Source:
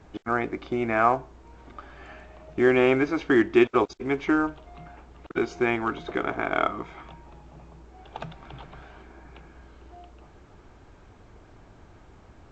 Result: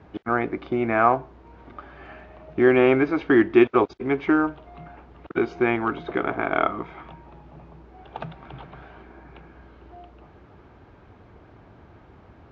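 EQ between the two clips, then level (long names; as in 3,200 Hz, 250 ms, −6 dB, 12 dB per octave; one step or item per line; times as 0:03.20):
high-pass filter 65 Hz
high-frequency loss of the air 230 metres
+3.5 dB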